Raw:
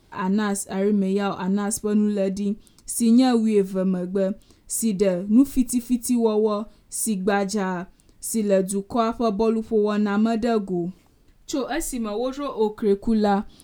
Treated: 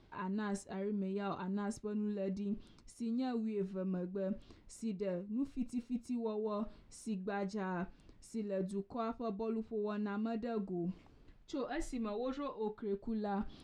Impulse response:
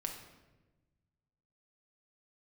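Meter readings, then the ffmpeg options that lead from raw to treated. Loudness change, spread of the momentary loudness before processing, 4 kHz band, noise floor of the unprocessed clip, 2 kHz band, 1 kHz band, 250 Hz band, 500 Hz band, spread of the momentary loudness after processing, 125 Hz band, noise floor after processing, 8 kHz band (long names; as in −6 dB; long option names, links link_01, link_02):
−17.0 dB, 9 LU, −19.5 dB, −57 dBFS, −16.0 dB, −16.0 dB, −17.0 dB, −17.0 dB, 5 LU, −15.0 dB, −62 dBFS, −27.0 dB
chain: -af "lowpass=3600,areverse,acompressor=threshold=-33dB:ratio=6,areverse,volume=-3.5dB"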